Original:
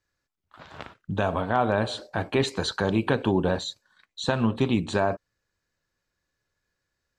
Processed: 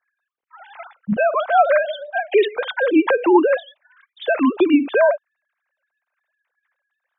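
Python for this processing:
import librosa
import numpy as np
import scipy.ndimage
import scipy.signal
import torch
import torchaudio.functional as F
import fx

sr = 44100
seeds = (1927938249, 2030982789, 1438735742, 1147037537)

y = fx.sine_speech(x, sr)
y = y * 10.0 ** (8.0 / 20.0)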